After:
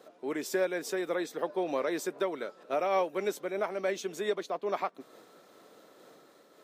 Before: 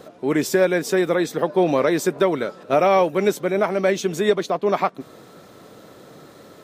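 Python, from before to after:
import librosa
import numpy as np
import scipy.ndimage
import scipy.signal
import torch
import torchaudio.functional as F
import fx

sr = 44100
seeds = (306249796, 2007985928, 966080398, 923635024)

y = scipy.signal.sosfilt(scipy.signal.butter(2, 300.0, 'highpass', fs=sr, output='sos'), x)
y = fx.am_noise(y, sr, seeds[0], hz=5.7, depth_pct=55)
y = y * librosa.db_to_amplitude(-8.0)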